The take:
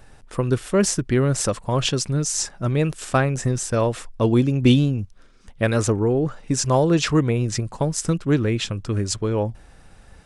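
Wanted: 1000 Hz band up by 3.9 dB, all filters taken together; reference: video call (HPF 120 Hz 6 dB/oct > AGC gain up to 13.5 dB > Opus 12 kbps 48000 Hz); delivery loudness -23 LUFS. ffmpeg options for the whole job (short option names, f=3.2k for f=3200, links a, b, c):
-af "highpass=f=120:p=1,equalizer=f=1k:t=o:g=5,dynaudnorm=m=13.5dB,volume=-0.5dB" -ar 48000 -c:a libopus -b:a 12k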